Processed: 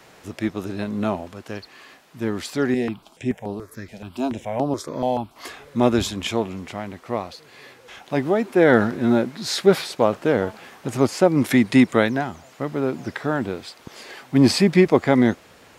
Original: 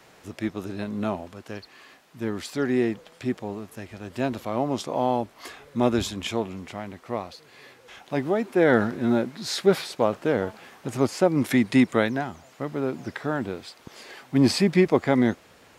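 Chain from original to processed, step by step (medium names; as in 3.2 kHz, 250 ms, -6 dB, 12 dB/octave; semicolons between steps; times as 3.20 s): 2.74–5.36 s: stepped phaser 7 Hz 320–6900 Hz; trim +4 dB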